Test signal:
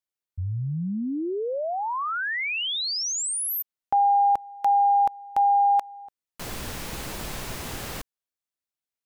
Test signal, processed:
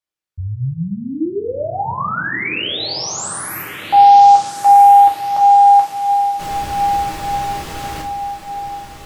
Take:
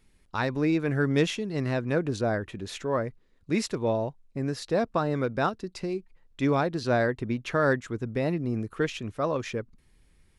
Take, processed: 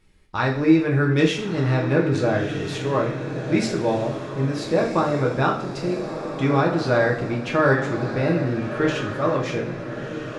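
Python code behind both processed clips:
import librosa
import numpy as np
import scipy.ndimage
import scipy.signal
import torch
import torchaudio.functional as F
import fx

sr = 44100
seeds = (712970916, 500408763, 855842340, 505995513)

p1 = fx.high_shelf(x, sr, hz=8400.0, db=-9.5)
p2 = p1 + fx.echo_diffused(p1, sr, ms=1342, feedback_pct=46, wet_db=-9, dry=0)
p3 = fx.rev_double_slope(p2, sr, seeds[0], early_s=0.42, late_s=2.3, knee_db=-18, drr_db=-1.5)
y = p3 * 10.0 ** (2.5 / 20.0)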